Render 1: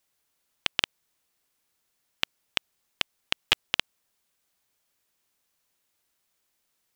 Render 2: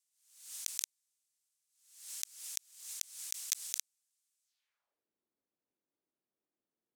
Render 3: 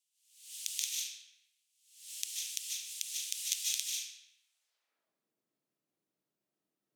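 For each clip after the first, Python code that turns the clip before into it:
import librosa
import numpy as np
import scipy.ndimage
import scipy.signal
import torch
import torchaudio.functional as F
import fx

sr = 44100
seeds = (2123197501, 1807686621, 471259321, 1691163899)

y1 = fx.self_delay(x, sr, depth_ms=0.33)
y1 = fx.filter_sweep_bandpass(y1, sr, from_hz=7900.0, to_hz=310.0, start_s=4.43, end_s=5.06, q=1.5)
y1 = fx.pre_swell(y1, sr, db_per_s=90.0)
y1 = F.gain(torch.from_numpy(y1), -2.0).numpy()
y2 = fx.filter_sweep_highpass(y1, sr, from_hz=2900.0, to_hz=140.0, start_s=4.06, end_s=5.1, q=2.8)
y2 = fx.rev_freeverb(y2, sr, rt60_s=0.91, hf_ratio=0.85, predelay_ms=110, drr_db=-4.0)
y2 = F.gain(torch.from_numpy(y2), -2.5).numpy()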